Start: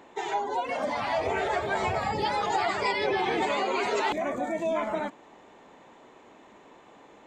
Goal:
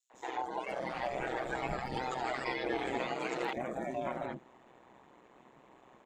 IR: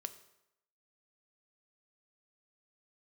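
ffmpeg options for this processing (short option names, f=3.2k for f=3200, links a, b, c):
-filter_complex "[0:a]equalizer=f=4k:t=o:w=2.4:g=-4,bandreject=f=60:t=h:w=6,bandreject=f=120:t=h:w=6,bandreject=f=180:t=h:w=6,bandreject=f=240:t=h:w=6,acrossover=split=490|5500[a][b][c];[b]adelay=100[d];[a]adelay=150[e];[e][d][c]amix=inputs=3:normalize=0,aeval=exprs='val(0)*sin(2*PI*63*n/s)':c=same,adynamicequalizer=threshold=0.00447:dfrequency=1000:dqfactor=2.9:tfrequency=1000:tqfactor=2.9:attack=5:release=100:ratio=0.375:range=3.5:mode=cutabove:tftype=bell,atempo=1.2,volume=-1.5dB"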